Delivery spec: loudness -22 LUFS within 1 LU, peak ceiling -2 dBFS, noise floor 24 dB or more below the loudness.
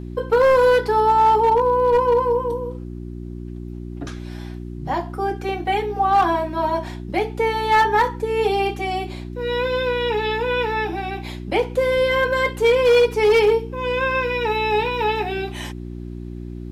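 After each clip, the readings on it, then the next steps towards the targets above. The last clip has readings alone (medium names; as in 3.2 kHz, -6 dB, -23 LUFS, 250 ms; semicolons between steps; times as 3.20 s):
clipped samples 0.9%; clipping level -10.5 dBFS; hum 60 Hz; highest harmonic 360 Hz; hum level -30 dBFS; loudness -19.5 LUFS; peak level -10.5 dBFS; loudness target -22.0 LUFS
-> clip repair -10.5 dBFS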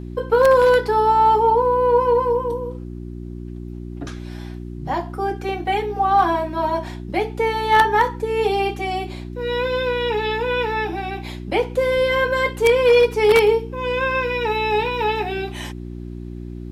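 clipped samples 0.0%; hum 60 Hz; highest harmonic 360 Hz; hum level -30 dBFS
-> de-hum 60 Hz, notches 6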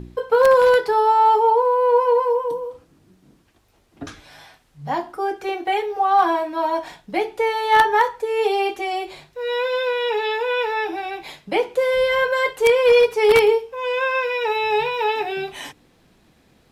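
hum not found; loudness -19.0 LUFS; peak level -1.5 dBFS; loudness target -22.0 LUFS
-> trim -3 dB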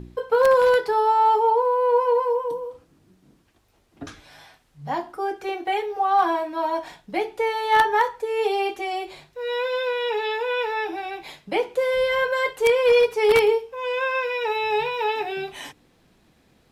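loudness -22.0 LUFS; peak level -4.5 dBFS; noise floor -61 dBFS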